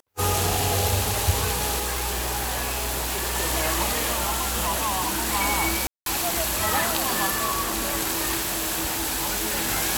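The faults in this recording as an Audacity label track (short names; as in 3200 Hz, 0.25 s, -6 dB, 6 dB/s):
1.780000	3.370000	clipped -23.5 dBFS
4.120000	5.290000	clipped -21 dBFS
5.870000	6.060000	gap 0.192 s
8.380000	9.690000	clipped -22 dBFS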